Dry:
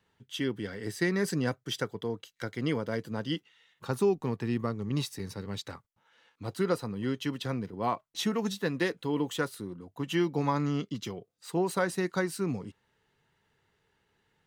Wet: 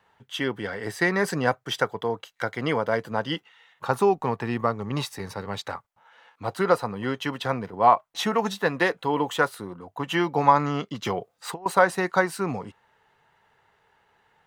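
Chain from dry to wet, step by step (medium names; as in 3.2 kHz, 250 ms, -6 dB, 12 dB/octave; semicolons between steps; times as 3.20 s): FFT filter 330 Hz 0 dB, 770 Hz +14 dB, 4.9 kHz +1 dB; 11.05–11.66 s: compressor with a negative ratio -30 dBFS, ratio -0.5; trim +1.5 dB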